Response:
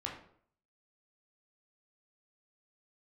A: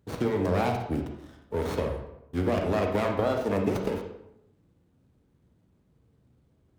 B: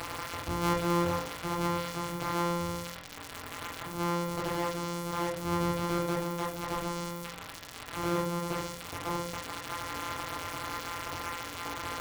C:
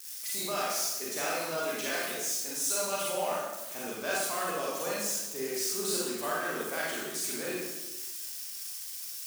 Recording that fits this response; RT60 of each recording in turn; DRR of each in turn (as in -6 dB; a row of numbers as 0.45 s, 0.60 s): B; 0.80 s, 0.60 s, 1.1 s; 2.5 dB, -2.0 dB, -6.0 dB